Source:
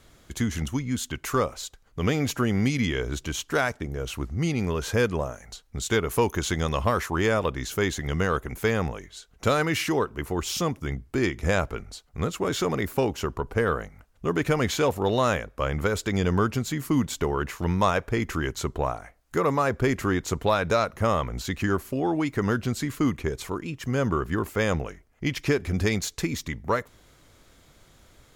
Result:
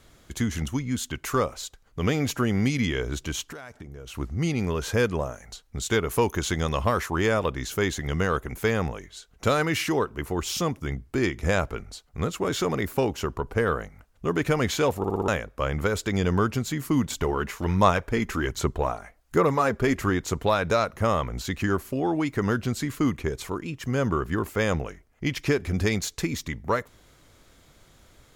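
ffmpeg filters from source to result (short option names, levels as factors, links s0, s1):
-filter_complex "[0:a]asettb=1/sr,asplit=3[s0][s1][s2];[s0]atrim=end=3.414[s3];[s1]atrim=start=3.41:end=4.15,asetpts=PTS-STARTPTS,afade=t=in:d=0.004:c=qsin,afade=t=out:st=0.736:d=0.004:c=qsin,acompressor=threshold=0.0158:ratio=12:attack=3.2:release=140:knee=1:detection=peak[s4];[s2]atrim=start=4.146[s5];[s3][s4]acrossfade=d=0.004:c1=hsin:c2=qsin[s6];[s6][s5]acrossfade=d=0.004:c1=qsin:c2=hsin,asettb=1/sr,asplit=3[s7][s8][s9];[s7]atrim=end=17.104[s10];[s8]atrim=start=17.1:end=20.1,asetpts=PTS-STARTPTS,afade=t=in:d=0.004:c=qsin,afade=t=out:st=2.996:d=0.004:c=qsin,aphaser=in_gain=1:out_gain=1:delay=5:decay=0.38:speed=1.3:type=sinusoidal[s11];[s9]atrim=start=20.096[s12];[s10][s11]acrossfade=d=0.004:c1=hsin:c2=qsin[s13];[s13][s12]acrossfade=d=0.004:c1=qsin:c2=hsin,asplit=6[s14][s15][s16][s17][s18][s19];[s14]atrim=end=15.042[s20];[s15]atrim=start=14.978:end=15.042[s21];[s16]atrim=start=14.978:end=15.042[s22];[s17]atrim=start=14.978:end=15.042[s23];[s18]atrim=start=14.978:end=15.042[s24];[s19]atrim=start=15.278[s25];[s20][s21]acrossfade=d=0.004:c1=hsin:c2=hsin[s26];[s26][s22]acrossfade=d=0.004:c1=hsin:c2=hsin[s27];[s27][s23]acrossfade=d=0.004:c1=hsin:c2=hsin[s28];[s28][s24]acrossfade=d=0.004:c1=hsin:c2=hsin[s29];[s29][s25]acrossfade=d=0.004:c1=hsin:c2=hsin"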